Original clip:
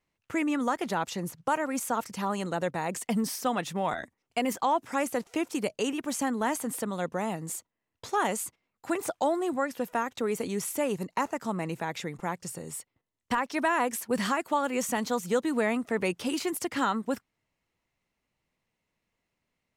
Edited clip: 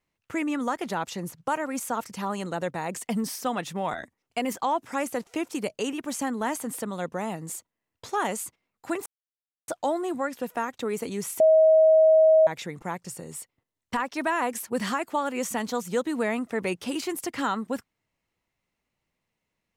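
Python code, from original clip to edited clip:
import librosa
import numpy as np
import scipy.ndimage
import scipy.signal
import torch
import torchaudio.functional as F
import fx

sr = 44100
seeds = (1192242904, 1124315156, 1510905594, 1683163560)

y = fx.edit(x, sr, fx.insert_silence(at_s=9.06, length_s=0.62),
    fx.bleep(start_s=10.78, length_s=1.07, hz=635.0, db=-13.5), tone=tone)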